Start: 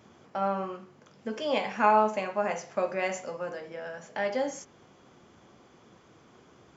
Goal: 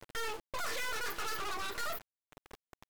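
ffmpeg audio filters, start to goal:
-af "afftdn=nr=18:nf=-51,agate=range=0.0178:threshold=0.002:ratio=16:detection=peak,lowshelf=f=130:g=10.5,aecho=1:1:6.6:0.37,acompressor=mode=upward:threshold=0.0112:ratio=2.5,asoftclip=type=hard:threshold=0.0133,acrusher=bits=6:dc=4:mix=0:aa=0.000001,asetrate=103194,aresample=44100,volume=2.37"

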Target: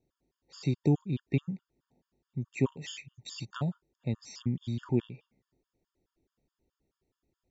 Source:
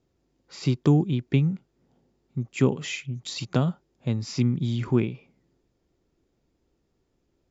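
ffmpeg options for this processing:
-af "afftfilt=real='re*gt(sin(2*PI*4.7*pts/sr)*(1-2*mod(floor(b*sr/1024/910),2)),0)':imag='im*gt(sin(2*PI*4.7*pts/sr)*(1-2*mod(floor(b*sr/1024/910),2)),0)':win_size=1024:overlap=0.75,volume=0.531"

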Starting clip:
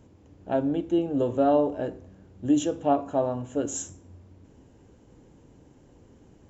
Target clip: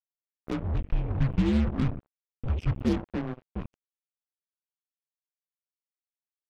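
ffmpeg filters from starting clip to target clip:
-filter_complex "[0:a]acompressor=threshold=0.0282:ratio=8,equalizer=f=140:t=o:w=0.34:g=10.5,highpass=f=380:t=q:w=0.5412,highpass=f=380:t=q:w=1.307,lowpass=f=3400:t=q:w=0.5176,lowpass=f=3400:t=q:w=0.7071,lowpass=f=3400:t=q:w=1.932,afreqshift=-370,asettb=1/sr,asplit=3[s0][s1][s2];[s0]atrim=end=0.604[s3];[s1]atrim=start=0.6:end=3.05,asetpts=PTS-STARTPTS,afade=t=in:d=0.004:c=qsin,afade=t=out:st=2.446:d=0.004:c=qsin,lowshelf=f=330:g=11[s4];[s2]atrim=start=3.046[s5];[s3][s4]acrossfade=d=0.004:c1=hsin:c2=qsin[s6];[s6][s5]acrossfade=d=0.004:c1=qsin:c2=hsin,acrusher=bits=5:mix=0:aa=0.5,volume=1.5"

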